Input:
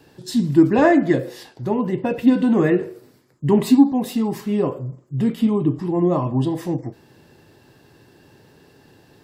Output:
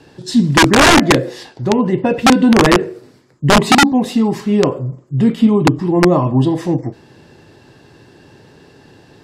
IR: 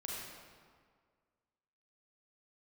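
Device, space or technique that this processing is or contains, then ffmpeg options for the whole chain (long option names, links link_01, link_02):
overflowing digital effects unit: -af "aeval=exprs='(mod(2.99*val(0)+1,2)-1)/2.99':channel_layout=same,lowpass=8000,volume=7dB"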